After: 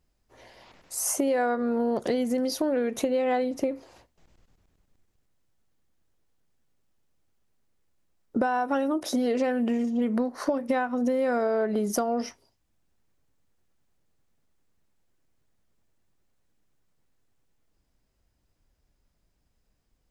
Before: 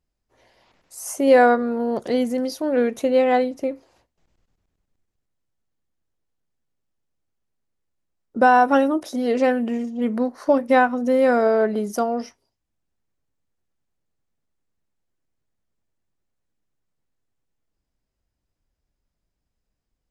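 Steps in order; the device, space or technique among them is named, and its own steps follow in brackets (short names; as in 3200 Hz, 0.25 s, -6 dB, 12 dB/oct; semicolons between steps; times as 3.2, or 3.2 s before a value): serial compression, peaks first (compressor, threshold -24 dBFS, peak gain reduction 13.5 dB; compressor 2:1, threshold -33 dBFS, peak gain reduction 7 dB); gain +6.5 dB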